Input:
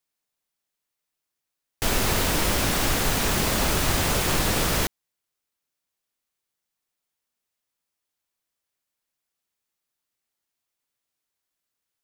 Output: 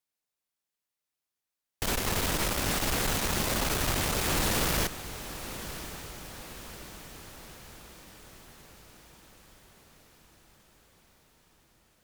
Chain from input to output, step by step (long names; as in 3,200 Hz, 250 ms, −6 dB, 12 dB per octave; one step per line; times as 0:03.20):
0:04.36–0:04.83: converter with a step at zero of −27 dBFS
tube saturation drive 24 dB, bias 0.8
feedback delay with all-pass diffusion 1,082 ms, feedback 58%, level −12.5 dB